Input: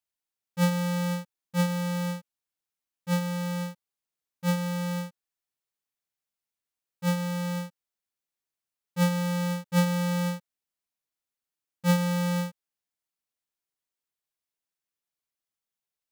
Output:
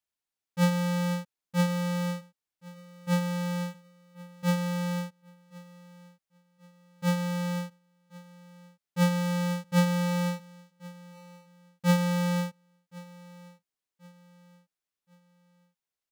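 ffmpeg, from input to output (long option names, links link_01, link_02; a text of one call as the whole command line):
ffmpeg -i in.wav -filter_complex "[0:a]highshelf=frequency=9200:gain=-5,asplit=2[link_01][link_02];[link_02]aecho=0:1:1077|2154|3231:0.0841|0.032|0.0121[link_03];[link_01][link_03]amix=inputs=2:normalize=0" out.wav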